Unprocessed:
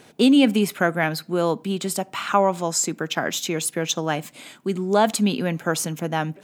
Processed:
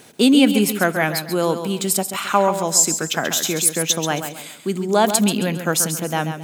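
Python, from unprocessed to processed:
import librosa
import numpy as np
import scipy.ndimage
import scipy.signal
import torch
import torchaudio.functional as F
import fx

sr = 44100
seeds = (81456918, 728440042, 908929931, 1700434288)

y = fx.high_shelf(x, sr, hz=6300.0, db=11.0)
y = fx.echo_feedback(y, sr, ms=135, feedback_pct=32, wet_db=-9)
y = y * 10.0 ** (1.5 / 20.0)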